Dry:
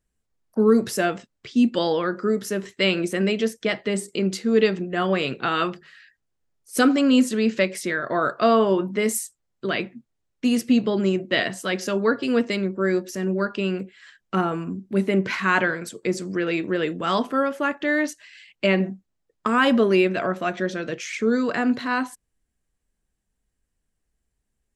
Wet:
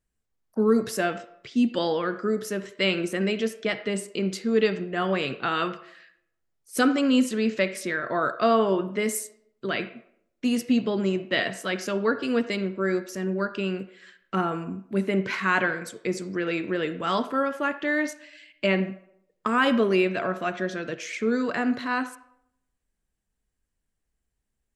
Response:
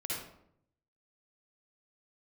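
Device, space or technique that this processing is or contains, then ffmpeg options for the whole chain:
filtered reverb send: -filter_complex "[0:a]asplit=2[s0][s1];[s1]highpass=530,lowpass=3500[s2];[1:a]atrim=start_sample=2205[s3];[s2][s3]afir=irnorm=-1:irlink=0,volume=0.224[s4];[s0][s4]amix=inputs=2:normalize=0,volume=0.668"

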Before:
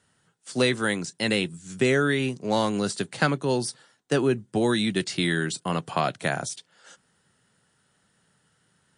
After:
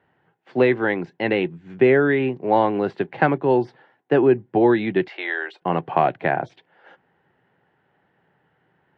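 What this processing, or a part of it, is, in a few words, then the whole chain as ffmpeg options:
bass cabinet: -filter_complex "[0:a]highpass=80,equalizer=f=95:t=q:w=4:g=-6,equalizer=f=140:t=q:w=4:g=-3,equalizer=f=210:t=q:w=4:g=-7,equalizer=f=360:t=q:w=4:g=5,equalizer=f=800:t=q:w=4:g=7,equalizer=f=1300:t=q:w=4:g=-7,lowpass=f=2300:w=0.5412,lowpass=f=2300:w=1.3066,asettb=1/sr,asplit=3[s0][s1][s2];[s0]atrim=end=5.084[s3];[s1]atrim=start=5.08:end=5.62,asetpts=PTS-STARTPTS,afade=t=in:d=0.004:c=qsin,afade=t=out:st=0.536:d=0.004:c=qsin,highpass=f=540:w=0.5412,highpass=f=540:w=1.3066[s4];[s2]atrim=start=5.616[s5];[s3][s4]acrossfade=d=0.004:c1=hsin:c2=qsin[s6];[s6][s5]acrossfade=d=0.004:c1=qsin:c2=hsin,volume=1.78"

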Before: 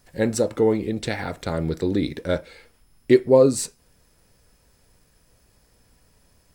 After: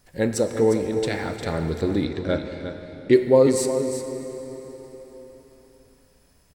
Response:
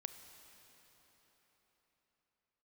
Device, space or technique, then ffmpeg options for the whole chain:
cave: -filter_complex "[0:a]aecho=1:1:354:0.335[s0];[1:a]atrim=start_sample=2205[s1];[s0][s1]afir=irnorm=-1:irlink=0,asettb=1/sr,asplit=3[s2][s3][s4];[s2]atrim=end=2.044[s5];[s3]atrim=start=2.04:end=3.13,asetpts=PTS-STARTPTS,afade=t=in:d=0.004:c=qsin,afade=t=out:st=1.086:d=0.004:c=qsin,lowpass=6100[s6];[s4]atrim=start=3.126[s7];[s5][s6]acrossfade=d=0.004:c1=hsin:c2=qsin[s8];[s8][s7]acrossfade=d=0.004:c1=qsin:c2=hsin,volume=1.41"

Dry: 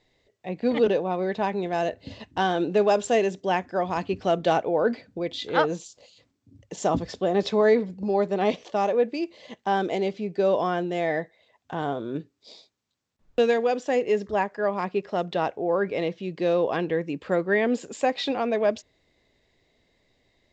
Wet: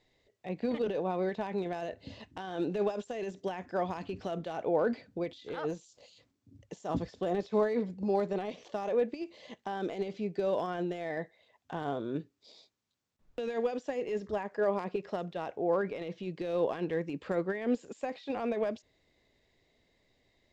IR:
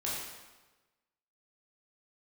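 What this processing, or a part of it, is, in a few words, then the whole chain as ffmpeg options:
de-esser from a sidechain: -filter_complex "[0:a]asettb=1/sr,asplit=3[s0][s1][s2];[s0]atrim=end=14.544[s3];[s1]atrim=start=14.54:end=14.96,asetpts=PTS-STARTPTS,afade=t=in:d=0.004:c=qsin,afade=t=out:st=0.416:d=0.004:c=qsin,equalizer=f=460:w=1.5:g=6.5[s4];[s2]atrim=start=14.956[s5];[s3][s4]acrossfade=d=0.004:c1=hsin:c2=qsin[s6];[s6][s5]acrossfade=d=0.004:c1=qsin:c2=hsin,asplit=2[s7][s8];[s8]highpass=5500,apad=whole_len=905243[s9];[s7][s9]sidechaincompress=threshold=0.00224:ratio=10:attack=0.72:release=42,volume=0.631"

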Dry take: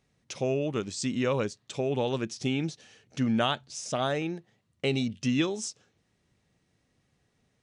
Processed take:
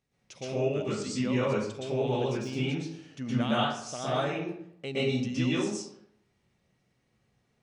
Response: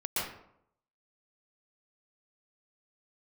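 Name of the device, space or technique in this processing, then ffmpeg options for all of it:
bathroom: -filter_complex "[1:a]atrim=start_sample=2205[s0];[0:a][s0]afir=irnorm=-1:irlink=0,asettb=1/sr,asplit=3[s1][s2][s3];[s1]atrim=end=2.144[s4];[s2]atrim=start=2.14:end=2.64,asetpts=PTS-STARTPTS,afade=t=in:d=0.004:c=qsin,afade=t=out:st=0.496:d=0.004:c=qsin,deesser=0.9[s5];[s3]atrim=start=2.636[s6];[s4][s5]acrossfade=d=0.004:c1=hsin:c2=qsin[s7];[s7][s6]acrossfade=d=0.004:c1=qsin:c2=hsin,volume=0.447"

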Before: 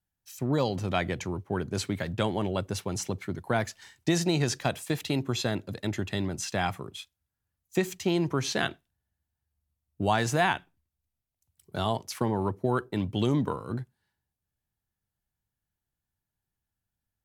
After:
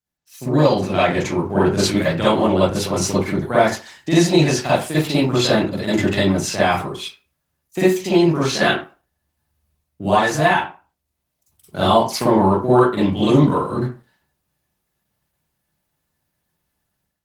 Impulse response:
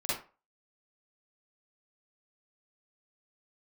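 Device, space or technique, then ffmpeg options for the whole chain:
far-field microphone of a smart speaker: -filter_complex "[0:a]asettb=1/sr,asplit=3[s0][s1][s2];[s0]atrim=end=5.124[s3];[s1]atrim=start=5.12:end=5.9,asetpts=PTS-STARTPTS,afade=t=in:d=0.004:c=qsin,afade=t=out:st=0.776:d=0.004:c=qsin,highshelf=f=9100:g=-3[s4];[s2]atrim=start=5.896[s5];[s3][s4]acrossfade=d=0.004:c1=hsin:c2=qsin[s6];[s6][s5]acrossfade=d=0.004:c1=qsin:c2=hsin[s7];[1:a]atrim=start_sample=2205[s8];[s7][s8]afir=irnorm=-1:irlink=0,highpass=f=130:p=1,dynaudnorm=f=270:g=3:m=4.47,volume=0.891" -ar 48000 -c:a libopus -b:a 20k

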